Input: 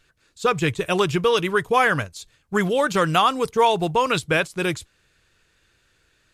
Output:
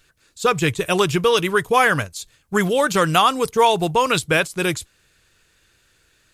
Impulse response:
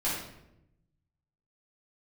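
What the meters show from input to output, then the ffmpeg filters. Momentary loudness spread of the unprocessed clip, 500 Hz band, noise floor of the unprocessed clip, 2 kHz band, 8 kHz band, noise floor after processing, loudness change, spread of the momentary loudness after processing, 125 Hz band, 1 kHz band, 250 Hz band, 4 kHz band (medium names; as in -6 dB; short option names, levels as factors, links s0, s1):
8 LU, +2.0 dB, -64 dBFS, +2.5 dB, +7.0 dB, -61 dBFS, +2.5 dB, 7 LU, +2.0 dB, +2.0 dB, +2.0 dB, +3.5 dB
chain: -af "crystalizer=i=1:c=0,volume=1.26"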